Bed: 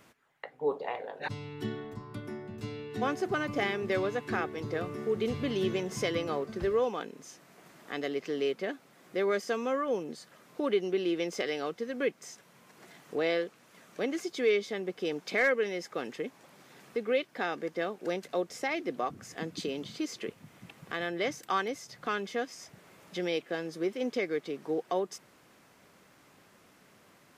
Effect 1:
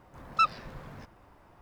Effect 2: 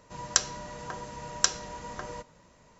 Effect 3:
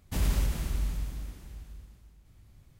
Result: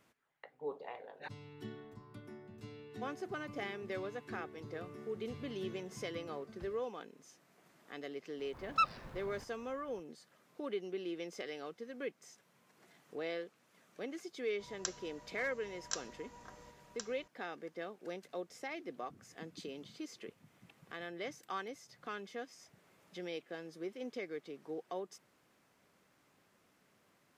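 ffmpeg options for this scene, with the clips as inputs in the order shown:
-filter_complex "[0:a]volume=-11dB[a];[2:a]aecho=1:1:1063:0.473[b];[1:a]atrim=end=1.61,asetpts=PTS-STARTPTS,volume=-6dB,afade=t=in:d=0.004:c=hsin,afade=t=out:st=1.606:d=0.004:c=hsin,adelay=8390[c];[b]atrim=end=2.79,asetpts=PTS-STARTPTS,volume=-16dB,afade=t=in:d=0.004:c=hsin,afade=t=out:st=2.786:d=0.004:c=hsin,adelay=14490[d];[a][c][d]amix=inputs=3:normalize=0"

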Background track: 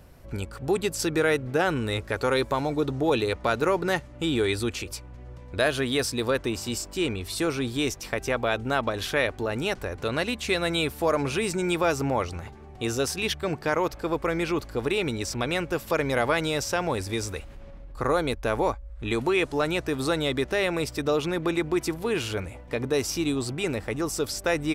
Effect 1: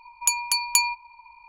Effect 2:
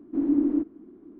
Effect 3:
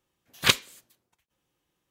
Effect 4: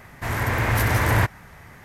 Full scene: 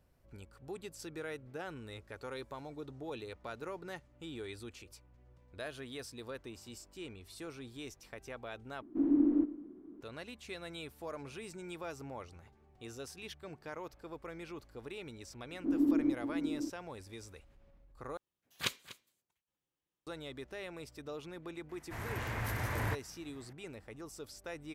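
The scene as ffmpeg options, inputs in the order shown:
-filter_complex "[2:a]asplit=2[a][b];[0:a]volume=-19.5dB[c];[a]aecho=1:1:116|232|348|464:0.141|0.0622|0.0273|0.012[d];[b]aecho=1:1:554:0.422[e];[3:a]aecho=1:1:244:0.141[f];[c]asplit=3[g][h][i];[g]atrim=end=8.824[j];[d]atrim=end=1.19,asetpts=PTS-STARTPTS,volume=-5dB[k];[h]atrim=start=10.006:end=18.174[l];[f]atrim=end=1.9,asetpts=PTS-STARTPTS,volume=-15dB[m];[i]atrim=start=20.066[n];[e]atrim=end=1.19,asetpts=PTS-STARTPTS,volume=-6.5dB,afade=t=in:d=0.004:c=hsin,afade=t=out:st=1.186:d=0.004:c=hsin,adelay=15510[o];[4:a]atrim=end=1.84,asetpts=PTS-STARTPTS,volume=-16dB,afade=t=in:d=0.004:c=hsin,afade=t=out:st=1.836:d=0.004:c=hsin,adelay=21690[p];[j][k]acrossfade=d=0.004:c1=hsin:c2=hsin[q];[q][l]acrossfade=d=0.004:c1=hsin:c2=hsin[r];[r][m]acrossfade=d=0.004:c1=hsin:c2=hsin[s];[s][n]acrossfade=d=0.004:c1=hsin:c2=hsin[t];[t][o][p]amix=inputs=3:normalize=0"

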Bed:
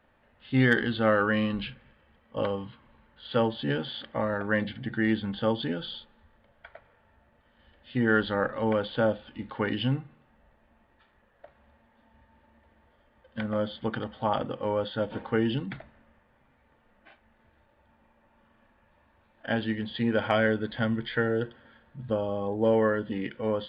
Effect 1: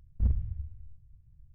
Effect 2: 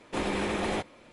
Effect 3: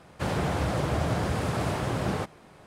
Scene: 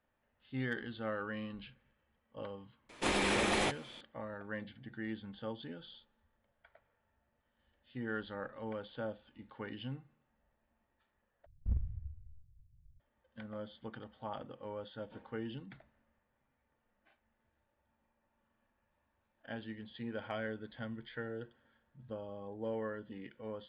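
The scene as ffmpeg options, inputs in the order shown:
-filter_complex "[0:a]volume=-15.5dB[a];[2:a]tiltshelf=f=1.3k:g=-4[b];[a]asplit=2[c][d];[c]atrim=end=11.464[e];[1:a]atrim=end=1.54,asetpts=PTS-STARTPTS,volume=-7.5dB[f];[d]atrim=start=12.996[g];[b]atrim=end=1.12,asetpts=PTS-STARTPTS,afade=t=in:d=0.004:c=hsin,afade=t=out:st=1.116:d=0.004:c=hsin,adelay=2890[h];[e][f]acrossfade=d=0.004:c1=hsin:c2=hsin[i];[i][g]acrossfade=d=0.004:c1=hsin:c2=hsin[j];[j][h]amix=inputs=2:normalize=0"

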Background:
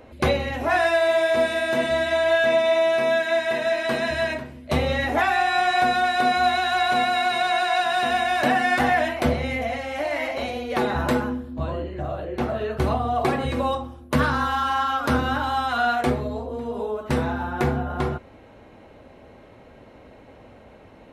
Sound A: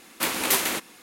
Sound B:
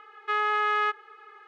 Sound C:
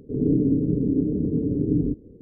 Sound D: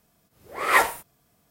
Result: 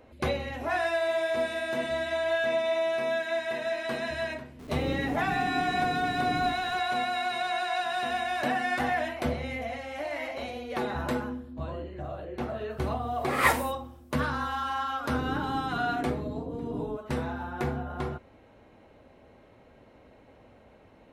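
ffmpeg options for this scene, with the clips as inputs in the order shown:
-filter_complex "[3:a]asplit=2[a][b];[0:a]volume=-8dB[c];[a]aeval=exprs='val(0)+0.5*0.0398*sgn(val(0))':c=same,atrim=end=2.21,asetpts=PTS-STARTPTS,volume=-14dB,afade=t=in:d=0.004:c=hsin,afade=t=out:st=2.206:d=0.004:c=hsin,adelay=4590[d];[4:a]atrim=end=1.5,asetpts=PTS-STARTPTS,volume=-4.5dB,afade=t=in:d=0.004:c=hsin,afade=t=out:st=1.496:d=0.004:c=hsin,adelay=12700[e];[b]atrim=end=2.21,asetpts=PTS-STARTPTS,volume=-14.5dB,afade=t=in:d=0.004:c=hsin,afade=t=out:st=2.206:d=0.004:c=hsin,adelay=15030[f];[c][d][e][f]amix=inputs=4:normalize=0"

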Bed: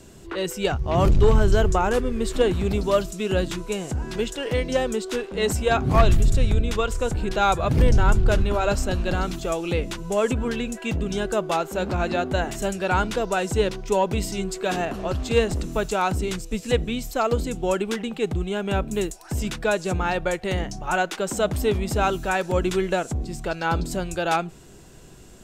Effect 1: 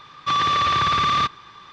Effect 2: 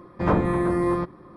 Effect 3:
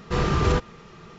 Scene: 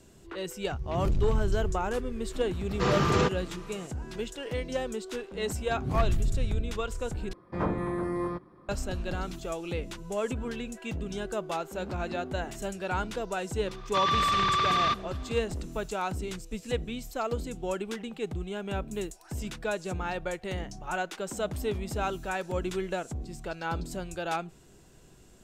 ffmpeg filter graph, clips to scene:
-filter_complex "[0:a]volume=-9dB[a];[3:a]highpass=120[b];[a]asplit=2[c][d];[c]atrim=end=7.334[e];[2:a]atrim=end=1.36,asetpts=PTS-STARTPTS,volume=-8.5dB[f];[d]atrim=start=8.686[g];[b]atrim=end=1.18,asetpts=PTS-STARTPTS,volume=-1dB,afade=t=in:d=0.004:c=hsin,afade=t=out:st=1.176:d=0.004:c=hsin,adelay=2690[h];[1:a]atrim=end=1.72,asetpts=PTS-STARTPTS,volume=-6dB,afade=t=in:d=0.004:c=hsin,afade=t=out:st=1.716:d=0.004:c=hsin,adelay=13670[i];[e][f]acrossfade=d=0.004:c1=hsin:c2=hsin[j];[j][g]acrossfade=d=0.004:c1=hsin:c2=hsin[k];[k][h][i]amix=inputs=3:normalize=0"

